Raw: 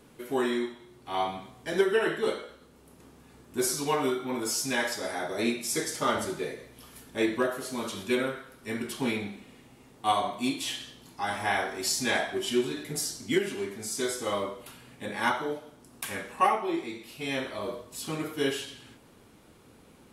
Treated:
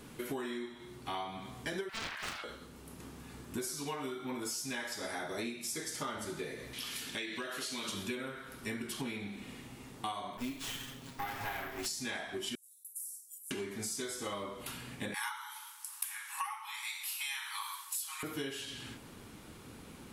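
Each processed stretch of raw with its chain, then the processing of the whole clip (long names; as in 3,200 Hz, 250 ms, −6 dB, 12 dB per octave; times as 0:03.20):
0:01.89–0:02.44: elliptic high-pass filter 710 Hz, stop band 50 dB + highs frequency-modulated by the lows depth 0.8 ms
0:06.73–0:07.89: meter weighting curve D + downward compressor 2 to 1, threshold −42 dBFS
0:10.37–0:11.86: lower of the sound and its delayed copy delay 7.4 ms + parametric band 4,800 Hz −9 dB 0.93 octaves + bad sample-rate conversion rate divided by 3×, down none, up hold
0:12.55–0:13.51: inverse Chebyshev high-pass filter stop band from 2,000 Hz, stop band 80 dB + downward compressor 5 to 1, threshold −45 dBFS
0:15.14–0:18.23: linear-phase brick-wall high-pass 800 Hz + parametric band 12,000 Hz +14 dB 1.2 octaves
whole clip: parametric band 550 Hz −5 dB 1.4 octaves; downward compressor 12 to 1, threshold −42 dBFS; level +6 dB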